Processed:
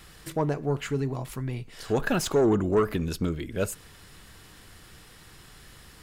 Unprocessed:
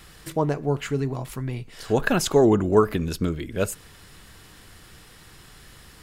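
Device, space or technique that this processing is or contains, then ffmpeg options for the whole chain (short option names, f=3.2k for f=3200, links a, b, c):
saturation between pre-emphasis and de-emphasis: -af "highshelf=f=3.5k:g=12,asoftclip=type=tanh:threshold=-13dB,highshelf=f=3.5k:g=-12,volume=-2dB"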